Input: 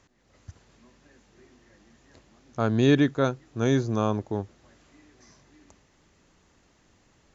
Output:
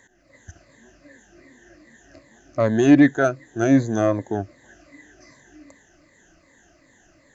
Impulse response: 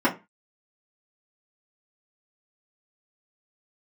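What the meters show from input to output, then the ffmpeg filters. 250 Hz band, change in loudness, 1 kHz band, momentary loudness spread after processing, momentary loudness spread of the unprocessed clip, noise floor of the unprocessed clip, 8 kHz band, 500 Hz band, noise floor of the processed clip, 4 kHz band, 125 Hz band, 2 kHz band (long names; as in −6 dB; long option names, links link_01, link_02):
+7.5 dB, +5.5 dB, +4.0 dB, 15 LU, 13 LU, −64 dBFS, can't be measured, +5.0 dB, −58 dBFS, −3.5 dB, +0.5 dB, +7.0 dB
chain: -af "afftfilt=real='re*pow(10,14/40*sin(2*PI*(1*log(max(b,1)*sr/1024/100)/log(2)-(-2.6)*(pts-256)/sr)))':imag='im*pow(10,14/40*sin(2*PI*(1*log(max(b,1)*sr/1024/100)/log(2)-(-2.6)*(pts-256)/sr)))':win_size=1024:overlap=0.75,asoftclip=type=tanh:threshold=-11dB,superequalizer=6b=2.24:8b=2.51:11b=3.16:15b=2"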